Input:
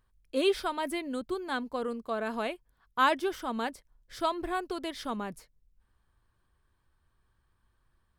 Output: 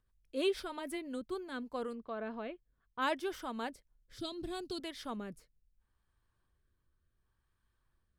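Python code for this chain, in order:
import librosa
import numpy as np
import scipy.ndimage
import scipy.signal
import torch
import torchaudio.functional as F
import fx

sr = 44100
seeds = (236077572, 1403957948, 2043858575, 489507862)

y = fx.graphic_eq(x, sr, hz=(125, 250, 500, 1000, 2000, 4000, 8000), db=(11, 6, -5, -8, -9, 10, 3), at=(4.18, 4.8))
y = fx.rotary_switch(y, sr, hz=6.3, then_hz=0.7, switch_at_s=0.82)
y = fx.air_absorb(y, sr, metres=250.0, at=(1.94, 3.01), fade=0.02)
y = y * 10.0 ** (-4.5 / 20.0)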